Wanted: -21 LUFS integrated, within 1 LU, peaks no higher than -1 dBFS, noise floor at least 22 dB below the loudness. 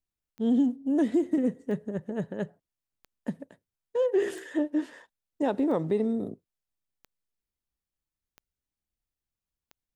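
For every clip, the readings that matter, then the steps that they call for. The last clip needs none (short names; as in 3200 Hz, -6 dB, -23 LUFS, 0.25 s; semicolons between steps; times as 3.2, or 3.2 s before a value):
clicks 8; loudness -29.0 LUFS; peak -16.0 dBFS; loudness target -21.0 LUFS
-> de-click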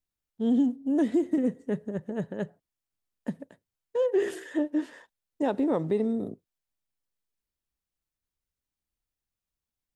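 clicks 0; loudness -29.0 LUFS; peak -16.0 dBFS; loudness target -21.0 LUFS
-> gain +8 dB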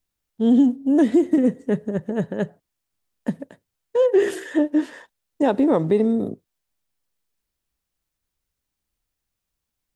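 loudness -21.0 LUFS; peak -8.0 dBFS; noise floor -82 dBFS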